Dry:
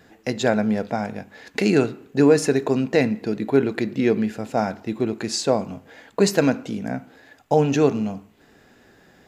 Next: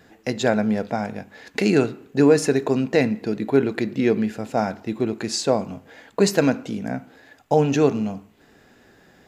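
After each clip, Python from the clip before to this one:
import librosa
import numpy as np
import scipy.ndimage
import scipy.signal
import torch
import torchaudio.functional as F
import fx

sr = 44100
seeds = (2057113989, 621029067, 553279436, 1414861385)

y = x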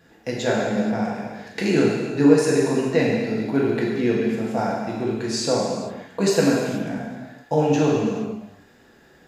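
y = fx.rev_gated(x, sr, seeds[0], gate_ms=500, shape='falling', drr_db=-4.5)
y = y * 10.0 ** (-5.5 / 20.0)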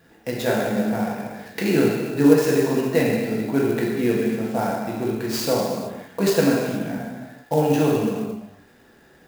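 y = fx.clock_jitter(x, sr, seeds[1], jitter_ms=0.024)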